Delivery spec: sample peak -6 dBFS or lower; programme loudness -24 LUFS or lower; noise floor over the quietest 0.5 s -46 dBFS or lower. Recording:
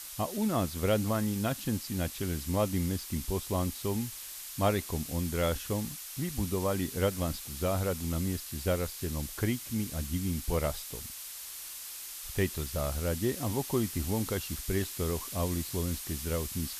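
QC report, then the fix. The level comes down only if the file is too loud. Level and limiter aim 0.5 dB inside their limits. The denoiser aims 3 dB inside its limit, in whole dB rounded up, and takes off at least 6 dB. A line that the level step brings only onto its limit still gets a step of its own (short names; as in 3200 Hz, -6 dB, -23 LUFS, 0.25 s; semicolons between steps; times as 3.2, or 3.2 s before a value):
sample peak -15.0 dBFS: OK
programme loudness -32.5 LUFS: OK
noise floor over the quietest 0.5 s -43 dBFS: fail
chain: denoiser 6 dB, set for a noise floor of -43 dBFS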